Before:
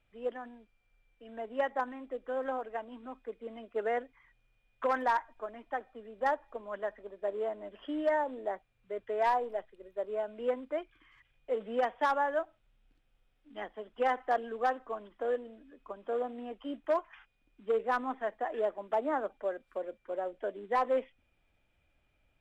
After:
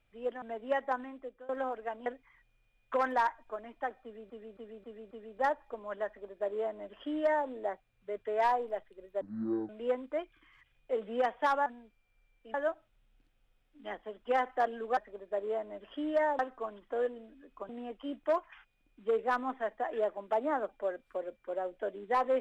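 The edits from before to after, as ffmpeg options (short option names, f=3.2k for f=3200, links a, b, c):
-filter_complex "[0:a]asplit=15[a][b][c][d][e][f][g][h][i][j][k][l][m][n][o];[a]atrim=end=0.422[p];[b]atrim=start=1.298:end=2.37,asetpts=PTS-STARTPTS,afade=t=out:st=0.642:d=0.43:silence=0.0891251[q];[c]atrim=start=2.37:end=2.942,asetpts=PTS-STARTPTS,afade=t=in:d=0.004:c=hsin:silence=0.0891251[r];[d]atrim=start=3.958:end=6.202[s];[e]atrim=start=5.928:end=6.202[t];[f]atrim=start=5.928:end=6.202[u];[g]atrim=start=5.928:end=6.202[v];[h]atrim=start=5.928:end=10.034[w];[i]atrim=start=10.03:end=10.28,asetpts=PTS-STARTPTS,asetrate=22932,aresample=44100[x];[j]atrim=start=10.276:end=12.252[y];[k]atrim=start=0.418:end=1.302[z];[l]atrim=start=12.248:end=14.682[aa];[m]atrim=start=6.878:end=8.302[ab];[n]atrim=start=14.678:end=15.982[ac];[o]atrim=start=16.298[ad];[q][r]concat=n=2:v=0:a=1[ae];[p][ae]acrossfade=d=0.004:c1=hsin:c2=hsin[af];[af][s]acrossfade=d=0.004:c1=hsin:c2=hsin[ag];[ag][t]acrossfade=d=0.004:c1=hsin:c2=hsin[ah];[ah][u]acrossfade=d=0.004:c1=hsin:c2=hsin[ai];[ai][v]acrossfade=d=0.004:c1=hsin:c2=hsin[aj];[aj][w]acrossfade=d=0.004:c1=hsin:c2=hsin[ak];[ak][x]acrossfade=d=0.004:c1=hsin:c2=hsin[al];[al][y]acrossfade=d=0.004:c1=hsin:c2=hsin[am];[am][z]acrossfade=d=0.004:c1=hsin:c2=hsin[an];[an][aa]acrossfade=d=0.004:c1=hsin:c2=hsin[ao];[ao][ab]acrossfade=d=0.004:c1=hsin:c2=hsin[ap];[ap][ac]acrossfade=d=0.004:c1=hsin:c2=hsin[aq];[aq][ad]acrossfade=d=0.004:c1=hsin:c2=hsin"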